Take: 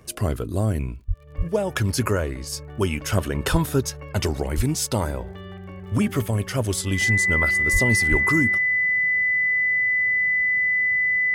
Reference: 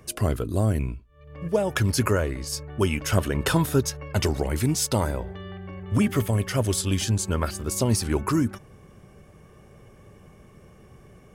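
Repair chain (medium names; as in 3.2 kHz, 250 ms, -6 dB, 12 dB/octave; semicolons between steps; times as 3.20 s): de-click; band-stop 2 kHz, Q 30; de-plosive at 1.07/1.37/3.51/4.56/7.72/8.10 s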